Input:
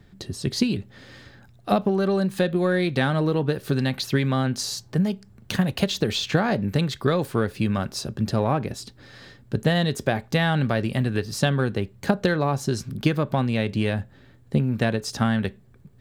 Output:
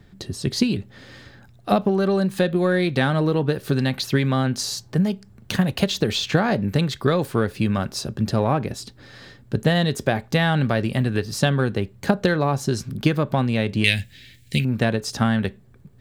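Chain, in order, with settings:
0:13.84–0:14.65: drawn EQ curve 100 Hz 0 dB, 1,200 Hz −14 dB, 2,200 Hz +15 dB
level +2 dB

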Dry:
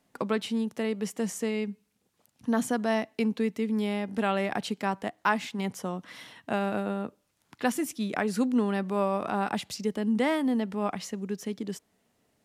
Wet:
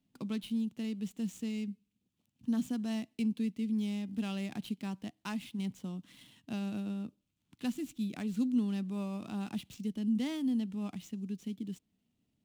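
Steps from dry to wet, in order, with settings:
running median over 9 samples
flat-topped bell 900 Hz −15.5 dB 2.7 octaves
level −3.5 dB

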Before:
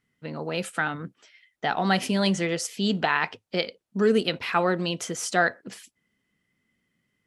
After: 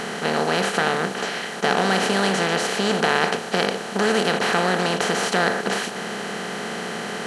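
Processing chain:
compressor on every frequency bin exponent 0.2
level −4.5 dB

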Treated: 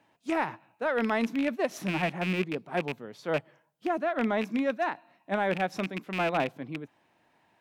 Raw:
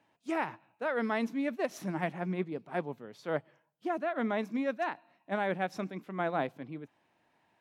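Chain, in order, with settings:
loose part that buzzes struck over −39 dBFS, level −27 dBFS
in parallel at −11.5 dB: soft clipping −28.5 dBFS, distortion −12 dB
on the sum: level +2.5 dB

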